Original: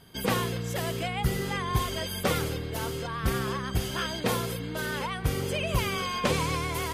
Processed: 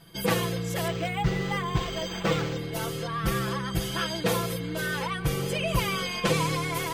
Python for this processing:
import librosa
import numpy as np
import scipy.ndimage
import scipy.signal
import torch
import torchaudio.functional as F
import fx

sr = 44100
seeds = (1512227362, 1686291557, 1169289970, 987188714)

y = x + 0.9 * np.pad(x, (int(6.0 * sr / 1000.0), 0))[:len(x)]
y = fx.resample_linear(y, sr, factor=4, at=(0.88, 2.59))
y = y * librosa.db_to_amplitude(-1.0)